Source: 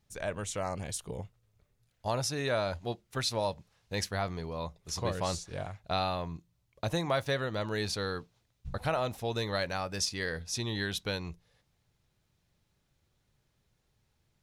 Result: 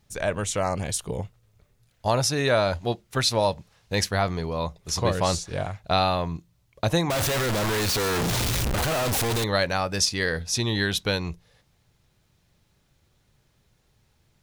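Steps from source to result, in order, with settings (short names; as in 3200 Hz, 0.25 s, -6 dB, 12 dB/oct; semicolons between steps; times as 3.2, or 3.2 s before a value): 7.1–9.44 infinite clipping; gain +9 dB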